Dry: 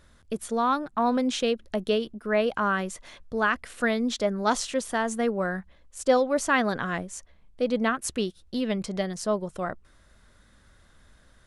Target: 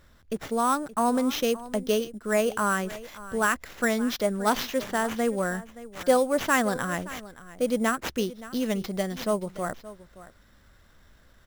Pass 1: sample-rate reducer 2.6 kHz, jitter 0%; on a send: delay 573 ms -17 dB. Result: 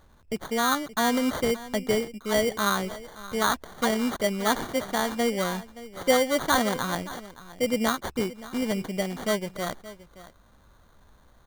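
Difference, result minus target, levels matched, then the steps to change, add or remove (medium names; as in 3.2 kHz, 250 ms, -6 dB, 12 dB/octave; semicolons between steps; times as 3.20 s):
sample-rate reducer: distortion +10 dB
change: sample-rate reducer 9.2 kHz, jitter 0%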